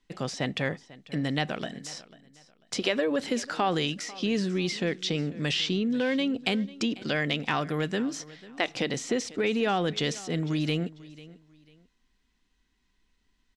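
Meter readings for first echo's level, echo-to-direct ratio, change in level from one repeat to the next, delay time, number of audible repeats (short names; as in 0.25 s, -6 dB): -19.5 dB, -19.0 dB, -11.0 dB, 0.494 s, 2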